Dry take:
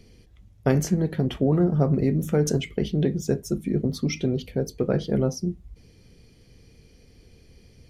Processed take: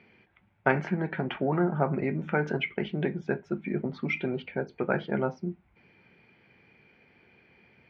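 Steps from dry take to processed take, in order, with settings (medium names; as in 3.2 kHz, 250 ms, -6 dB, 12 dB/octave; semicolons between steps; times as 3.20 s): cabinet simulation 240–2800 Hz, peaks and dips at 280 Hz -7 dB, 470 Hz -8 dB, 880 Hz +9 dB, 1.5 kHz +10 dB, 2.3 kHz +8 dB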